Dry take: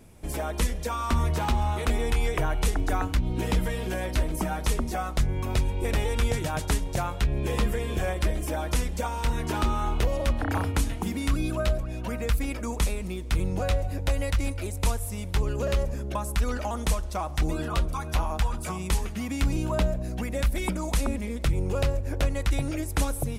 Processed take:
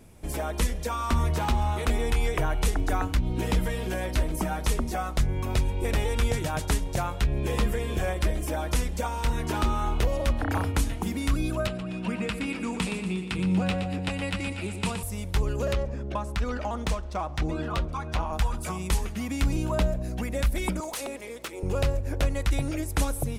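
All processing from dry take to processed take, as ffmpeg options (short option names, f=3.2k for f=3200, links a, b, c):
-filter_complex "[0:a]asettb=1/sr,asplit=3[a][b][c];[a]atrim=end=11.674[d];[b]atrim=start=11.67:end=15.03,asetpts=PTS-STARTPTS,afade=t=in:d=0.004:c=qsin,afade=t=out:st=3.356:d=0.004:c=qsin,highpass=140,equalizer=f=190:t=q:w=4:g=10,equalizer=f=590:t=q:w=4:g=-7,equalizer=f=2.7k:t=q:w=4:g=7,equalizer=f=6.2k:t=q:w=4:g=-9,lowpass=f=9.1k:w=0.5412,lowpass=f=9.1k:w=1.3066,aecho=1:1:119|238|357|476|595|714:0.376|0.203|0.11|0.0592|0.032|0.0173,atrim=end_sample=148176,asoftclip=type=hard:threshold=-17.5dB[e];[c]atrim=start=15.026[f];[d][e]acrossfade=d=0.004:c1=hsin:c2=qsin[g];[g][f]acrossfade=d=0.004:c1=qsin:c2=hsin,asettb=1/sr,asplit=3[h][i][j];[h]atrim=end=15.734[k];[i]atrim=start=15.73:end=18.33,asetpts=PTS-STARTPTS,afade=t=in:d=0.004:c=qsin,afade=t=out:st=2.596:d=0.004:c=qsin,highpass=56,adynamicsmooth=sensitivity=4.5:basefreq=4.2k[l];[j]atrim=start=18.326[m];[k][l]acrossfade=d=0.004:c1=hsin:c2=qsin[n];[n][m]acrossfade=d=0.004:c1=qsin:c2=hsin,asettb=1/sr,asplit=3[o][p][q];[o]atrim=end=20.804[r];[p]atrim=start=20.8:end=21.63,asetpts=PTS-STARTPTS,afade=t=in:d=0.004:c=qsin,afade=t=out:st=0.826:d=0.004:c=qsin,highpass=f=350:w=0.5412,highpass=f=350:w=1.3066,aeval=exprs='val(0)+0.00224*(sin(2*PI*60*n/s)+sin(2*PI*2*60*n/s)/2+sin(2*PI*3*60*n/s)/3+sin(2*PI*4*60*n/s)/4+sin(2*PI*5*60*n/s)/5)':c=same,aeval=exprs='0.0473*(abs(mod(val(0)/0.0473+3,4)-2)-1)':c=same[s];[q]atrim=start=21.626[t];[r][s]acrossfade=d=0.004:c1=hsin:c2=qsin[u];[u][t]acrossfade=d=0.004:c1=qsin:c2=hsin"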